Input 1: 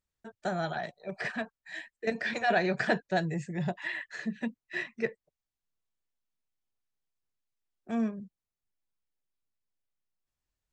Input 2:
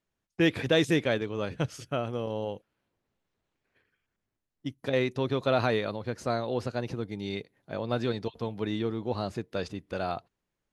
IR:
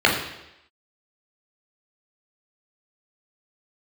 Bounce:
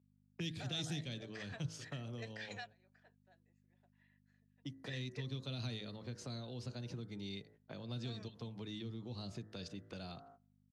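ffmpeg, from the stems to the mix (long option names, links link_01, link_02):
-filter_complex "[0:a]highpass=500,adelay=150,volume=-8dB[link_01];[1:a]bandreject=frequency=53.66:width_type=h:width=4,bandreject=frequency=107.32:width_type=h:width=4,bandreject=frequency=160.98:width_type=h:width=4,bandreject=frequency=214.64:width_type=h:width=4,bandreject=frequency=268.3:width_type=h:width=4,bandreject=frequency=321.96:width_type=h:width=4,bandreject=frequency=375.62:width_type=h:width=4,bandreject=frequency=429.28:width_type=h:width=4,bandreject=frequency=482.94:width_type=h:width=4,bandreject=frequency=536.6:width_type=h:width=4,bandreject=frequency=590.26:width_type=h:width=4,bandreject=frequency=643.92:width_type=h:width=4,bandreject=frequency=697.58:width_type=h:width=4,bandreject=frequency=751.24:width_type=h:width=4,bandreject=frequency=804.9:width_type=h:width=4,bandreject=frequency=858.56:width_type=h:width=4,bandreject=frequency=912.22:width_type=h:width=4,bandreject=frequency=965.88:width_type=h:width=4,bandreject=frequency=1019.54:width_type=h:width=4,bandreject=frequency=1073.2:width_type=h:width=4,bandreject=frequency=1126.86:width_type=h:width=4,bandreject=frequency=1180.52:width_type=h:width=4,bandreject=frequency=1234.18:width_type=h:width=4,bandreject=frequency=1287.84:width_type=h:width=4,bandreject=frequency=1341.5:width_type=h:width=4,bandreject=frequency=1395.16:width_type=h:width=4,bandreject=frequency=1448.82:width_type=h:width=4,bandreject=frequency=1502.48:width_type=h:width=4,bandreject=frequency=1556.14:width_type=h:width=4,bandreject=frequency=1609.8:width_type=h:width=4,bandreject=frequency=1663.46:width_type=h:width=4,bandreject=frequency=1717.12:width_type=h:width=4,bandreject=frequency=1770.78:width_type=h:width=4,bandreject=frequency=1824.44:width_type=h:width=4,bandreject=frequency=1878.1:width_type=h:width=4,bandreject=frequency=1931.76:width_type=h:width=4,bandreject=frequency=1985.42:width_type=h:width=4,agate=range=-20dB:threshold=-52dB:ratio=16:detection=peak,acrossover=split=280|3000[link_02][link_03][link_04];[link_03]acompressor=threshold=-40dB:ratio=10[link_05];[link_02][link_05][link_04]amix=inputs=3:normalize=0,volume=-3.5dB,asplit=2[link_06][link_07];[link_07]apad=whole_len=479376[link_08];[link_01][link_08]sidechaingate=range=-32dB:threshold=-50dB:ratio=16:detection=peak[link_09];[link_09][link_06]amix=inputs=2:normalize=0,acrossover=split=170|3000[link_10][link_11][link_12];[link_11]acompressor=threshold=-48dB:ratio=6[link_13];[link_10][link_13][link_12]amix=inputs=3:normalize=0,aeval=exprs='val(0)+0.000562*(sin(2*PI*50*n/s)+sin(2*PI*2*50*n/s)/2+sin(2*PI*3*50*n/s)/3+sin(2*PI*4*50*n/s)/4+sin(2*PI*5*50*n/s)/5)':channel_layout=same,highpass=120,lowpass=7400"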